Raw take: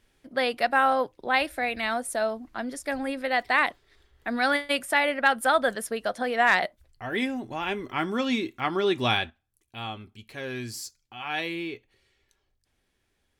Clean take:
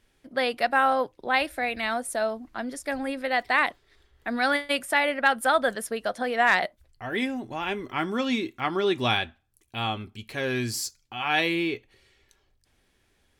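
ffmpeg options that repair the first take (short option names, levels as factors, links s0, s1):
-af "asetnsamples=n=441:p=0,asendcmd='9.3 volume volume 6.5dB',volume=1"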